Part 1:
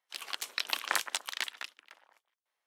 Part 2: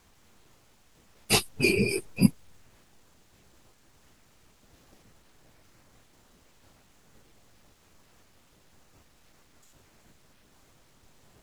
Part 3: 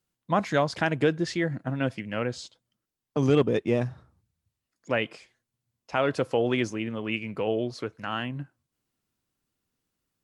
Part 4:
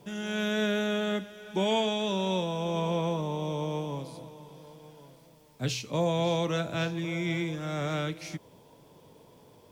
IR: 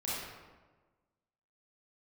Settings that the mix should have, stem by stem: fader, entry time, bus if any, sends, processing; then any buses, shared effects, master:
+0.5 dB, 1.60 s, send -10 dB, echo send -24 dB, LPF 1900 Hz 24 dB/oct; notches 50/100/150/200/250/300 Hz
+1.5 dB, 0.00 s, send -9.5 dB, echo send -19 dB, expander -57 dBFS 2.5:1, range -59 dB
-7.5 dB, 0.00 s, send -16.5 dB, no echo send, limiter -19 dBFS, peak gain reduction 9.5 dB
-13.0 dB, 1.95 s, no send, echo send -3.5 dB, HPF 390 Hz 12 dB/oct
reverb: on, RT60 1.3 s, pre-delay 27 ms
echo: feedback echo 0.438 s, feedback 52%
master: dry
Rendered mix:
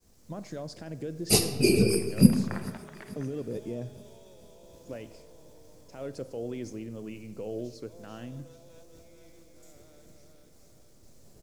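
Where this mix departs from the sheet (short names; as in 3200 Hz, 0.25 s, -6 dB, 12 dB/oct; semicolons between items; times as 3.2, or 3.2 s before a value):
stem 4 -13.0 dB -> -22.5 dB; master: extra band shelf 1700 Hz -11 dB 2.5 oct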